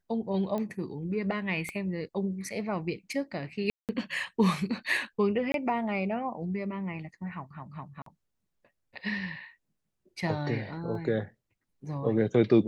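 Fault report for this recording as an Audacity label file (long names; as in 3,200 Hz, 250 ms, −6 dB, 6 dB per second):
0.580000	0.580000	click −22 dBFS
1.690000	1.690000	click −22 dBFS
3.700000	3.890000	drop-out 188 ms
5.520000	5.540000	drop-out 22 ms
8.020000	8.060000	drop-out 43 ms
10.950000	10.950000	drop-out 2 ms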